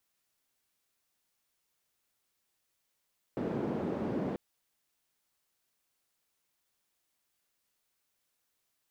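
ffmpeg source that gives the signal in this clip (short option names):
-f lavfi -i "anoisesrc=c=white:d=0.99:r=44100:seed=1,highpass=f=210,lowpass=f=280,volume=-6.4dB"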